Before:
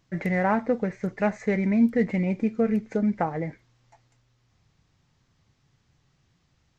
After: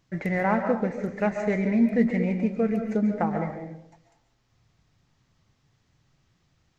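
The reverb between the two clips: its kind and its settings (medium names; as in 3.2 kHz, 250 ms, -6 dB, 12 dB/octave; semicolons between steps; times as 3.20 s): algorithmic reverb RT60 0.77 s, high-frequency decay 0.4×, pre-delay 100 ms, DRR 5.5 dB; trim -1 dB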